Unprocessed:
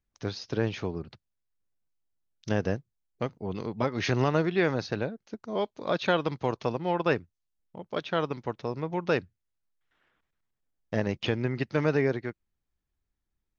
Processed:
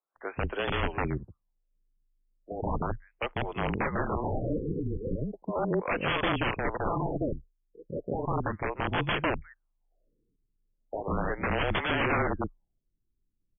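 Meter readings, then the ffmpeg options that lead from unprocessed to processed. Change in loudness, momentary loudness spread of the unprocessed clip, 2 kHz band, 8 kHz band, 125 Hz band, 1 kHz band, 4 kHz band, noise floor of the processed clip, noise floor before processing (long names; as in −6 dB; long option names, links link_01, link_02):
−1.5 dB, 11 LU, +2.5 dB, can't be measured, −1.5 dB, +2.5 dB, +0.5 dB, −79 dBFS, −83 dBFS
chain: -filter_complex "[0:a]acrossover=split=490|3200[link_01][link_02][link_03];[link_01]adelay=150[link_04];[link_03]adelay=350[link_05];[link_04][link_02][link_05]amix=inputs=3:normalize=0,aresample=16000,aeval=exprs='(mod(20*val(0)+1,2)-1)/20':channel_layout=same,aresample=44100,afreqshift=-26,afftfilt=real='re*lt(b*sr/1024,470*pow(3500/470,0.5+0.5*sin(2*PI*0.36*pts/sr)))':imag='im*lt(b*sr/1024,470*pow(3500/470,0.5+0.5*sin(2*PI*0.36*pts/sr)))':win_size=1024:overlap=0.75,volume=5.5dB"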